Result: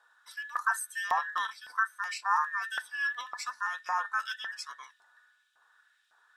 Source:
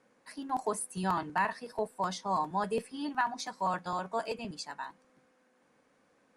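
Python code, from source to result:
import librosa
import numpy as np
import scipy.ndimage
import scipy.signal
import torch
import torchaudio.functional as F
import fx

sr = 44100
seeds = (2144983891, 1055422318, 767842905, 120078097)

y = fx.band_invert(x, sr, width_hz=2000)
y = fx.hum_notches(y, sr, base_hz=60, count=4)
y = fx.filter_lfo_highpass(y, sr, shape='saw_up', hz=1.8, low_hz=790.0, high_hz=3000.0, q=1.8)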